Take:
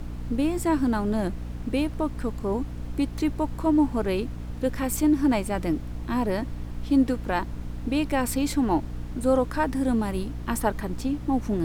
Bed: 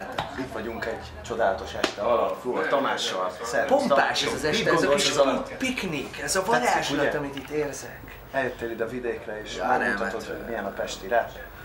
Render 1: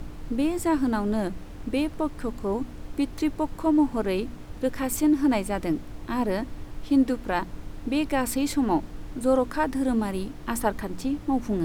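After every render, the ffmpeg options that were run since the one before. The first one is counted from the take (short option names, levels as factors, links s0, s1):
-af "bandreject=f=60:t=h:w=4,bandreject=f=120:t=h:w=4,bandreject=f=180:t=h:w=4,bandreject=f=240:t=h:w=4"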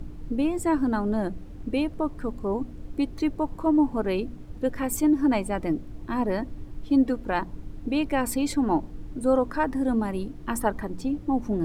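-af "afftdn=nr=10:nf=-41"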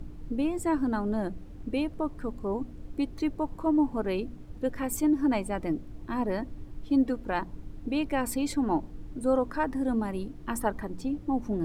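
-af "volume=0.668"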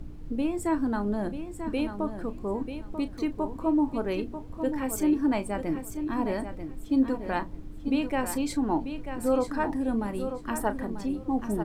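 -filter_complex "[0:a]asplit=2[s0][s1];[s1]adelay=34,volume=0.224[s2];[s0][s2]amix=inputs=2:normalize=0,aecho=1:1:940|1880|2820:0.355|0.071|0.0142"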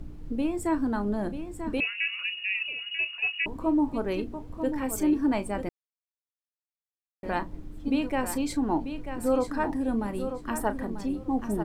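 -filter_complex "[0:a]asettb=1/sr,asplit=3[s0][s1][s2];[s0]atrim=end=1.804[s3];[s1]atrim=start=1.8:end=3.46,asetpts=PTS-STARTPTS,afade=t=in:d=0.004:c=qsin,afade=t=out:st=1.656:d=0.004:c=qsin,lowpass=f=2500:t=q:w=0.5098,lowpass=f=2500:t=q:w=0.6013,lowpass=f=2500:t=q:w=0.9,lowpass=f=2500:t=q:w=2.563,afreqshift=-2900[s4];[s2]atrim=start=3.456[s5];[s3][s4]acrossfade=d=0.004:c1=hsin:c2=qsin[s6];[s6][s5]acrossfade=d=0.004:c1=qsin:c2=hsin,asplit=3[s7][s8][s9];[s7]atrim=end=5.69,asetpts=PTS-STARTPTS,afade=t=out:st=5.686:d=0.004:c=hsin[s10];[s8]atrim=start=5.69:end=7.23,asetpts=PTS-STARTPTS,volume=0[s11];[s9]atrim=start=7.23,asetpts=PTS-STARTPTS,afade=t=in:d=0.004:c=hsin[s12];[s10][s11][s12]concat=n=3:v=0:a=1"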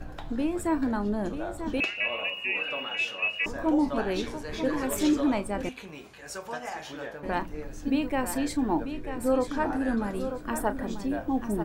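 -filter_complex "[1:a]volume=0.2[s0];[0:a][s0]amix=inputs=2:normalize=0"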